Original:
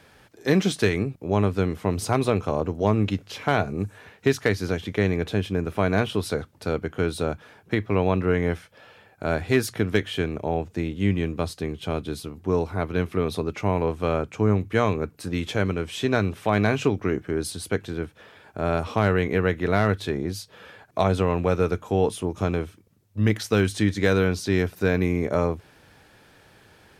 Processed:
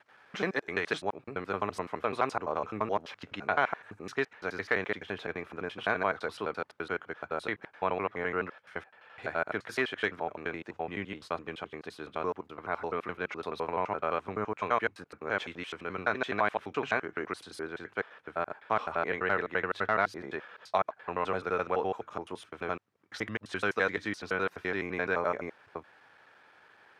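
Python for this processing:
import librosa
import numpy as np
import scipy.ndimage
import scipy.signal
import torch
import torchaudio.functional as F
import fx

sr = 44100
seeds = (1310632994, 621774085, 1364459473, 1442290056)

y = fx.block_reorder(x, sr, ms=85.0, group=4)
y = fx.bandpass_q(y, sr, hz=1300.0, q=1.1)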